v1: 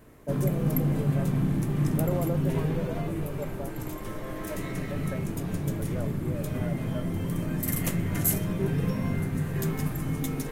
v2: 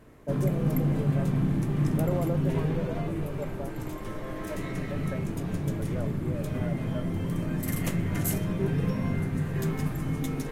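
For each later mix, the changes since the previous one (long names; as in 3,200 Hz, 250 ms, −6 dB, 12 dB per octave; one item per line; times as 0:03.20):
master: add high-shelf EQ 9,300 Hz −10.5 dB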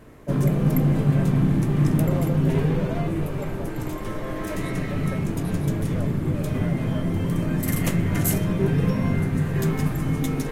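second voice: remove high-frequency loss of the air 360 metres
background +6.0 dB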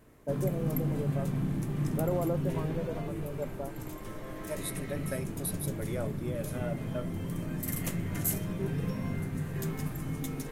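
second voice: add high-shelf EQ 8,300 Hz +10 dB
background −11.5 dB
master: add high-shelf EQ 6,400 Hz +8.5 dB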